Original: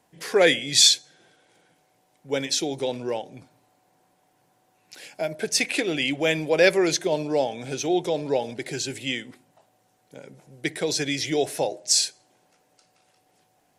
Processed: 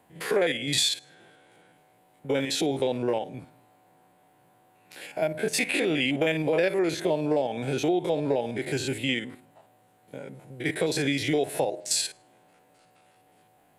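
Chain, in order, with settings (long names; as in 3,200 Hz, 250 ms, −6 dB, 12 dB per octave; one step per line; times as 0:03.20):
spectrum averaged block by block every 50 ms
parametric band 5,700 Hz −13.5 dB 0.76 octaves
downward compressor 6 to 1, threshold −27 dBFS, peak gain reduction 12.5 dB
level +5.5 dB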